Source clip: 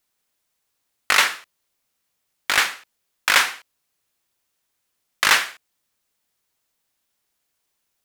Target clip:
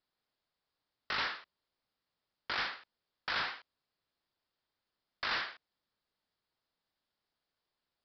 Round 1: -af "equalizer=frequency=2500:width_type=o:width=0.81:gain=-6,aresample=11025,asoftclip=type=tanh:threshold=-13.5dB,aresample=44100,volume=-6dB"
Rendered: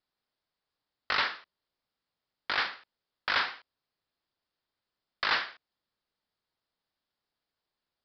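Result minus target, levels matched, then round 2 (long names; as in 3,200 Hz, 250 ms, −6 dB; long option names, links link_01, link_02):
soft clipping: distortion −8 dB
-af "equalizer=frequency=2500:width_type=o:width=0.81:gain=-6,aresample=11025,asoftclip=type=tanh:threshold=-25dB,aresample=44100,volume=-6dB"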